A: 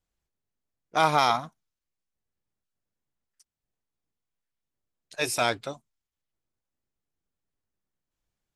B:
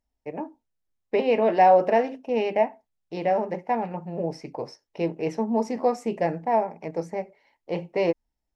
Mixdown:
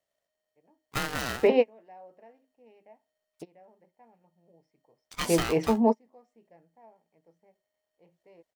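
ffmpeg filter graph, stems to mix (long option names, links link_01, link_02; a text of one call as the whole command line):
ffmpeg -i stem1.wav -i stem2.wav -filter_complex "[0:a]acompressor=threshold=-26dB:ratio=20,aeval=exprs='val(0)*sgn(sin(2*PI*620*n/s))':channel_layout=same,volume=-0.5dB,asplit=2[link_01][link_02];[1:a]lowpass=frequency=3900:poles=1,adelay=300,volume=2dB[link_03];[link_02]apad=whole_len=390295[link_04];[link_03][link_04]sidechaingate=range=-35dB:threshold=-59dB:ratio=16:detection=peak[link_05];[link_01][link_05]amix=inputs=2:normalize=0" out.wav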